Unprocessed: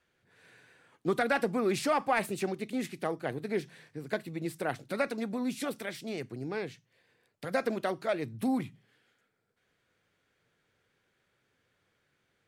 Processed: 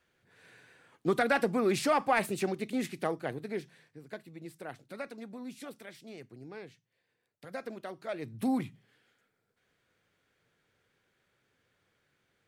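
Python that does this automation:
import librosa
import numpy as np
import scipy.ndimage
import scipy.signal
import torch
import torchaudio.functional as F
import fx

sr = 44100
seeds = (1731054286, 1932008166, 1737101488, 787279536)

y = fx.gain(x, sr, db=fx.line((3.06, 1.0), (4.08, -10.0), (7.92, -10.0), (8.47, 0.0)))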